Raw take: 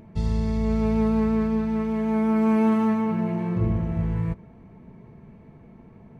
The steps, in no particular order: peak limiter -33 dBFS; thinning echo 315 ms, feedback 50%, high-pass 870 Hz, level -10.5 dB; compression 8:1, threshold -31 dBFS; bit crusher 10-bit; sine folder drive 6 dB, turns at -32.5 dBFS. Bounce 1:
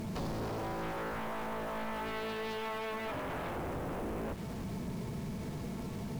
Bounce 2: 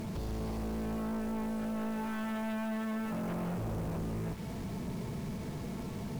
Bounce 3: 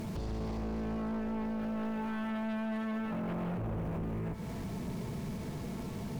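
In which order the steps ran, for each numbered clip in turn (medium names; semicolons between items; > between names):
compression > bit crusher > sine folder > thinning echo > peak limiter; compression > peak limiter > bit crusher > thinning echo > sine folder; bit crusher > compression > thinning echo > peak limiter > sine folder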